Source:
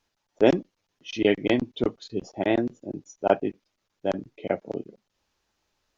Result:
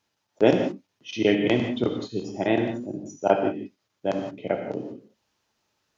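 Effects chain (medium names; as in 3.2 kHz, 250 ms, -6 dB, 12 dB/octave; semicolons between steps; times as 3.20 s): high-pass 85 Hz; peaking EQ 120 Hz +6 dB 0.23 oct; gated-style reverb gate 200 ms flat, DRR 3.5 dB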